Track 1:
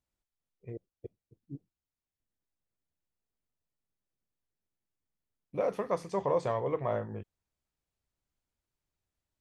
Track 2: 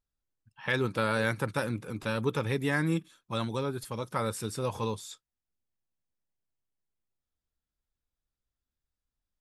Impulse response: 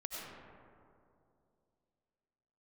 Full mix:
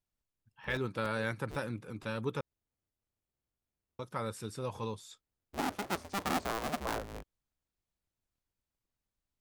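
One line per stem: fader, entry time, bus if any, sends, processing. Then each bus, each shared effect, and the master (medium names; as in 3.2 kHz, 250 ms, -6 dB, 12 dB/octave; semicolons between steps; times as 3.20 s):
-4.5 dB, 0.00 s, no send, cycle switcher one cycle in 2, inverted
-6.0 dB, 0.00 s, muted 2.41–3.99 s, no send, treble shelf 7.6 kHz -6 dB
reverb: none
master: none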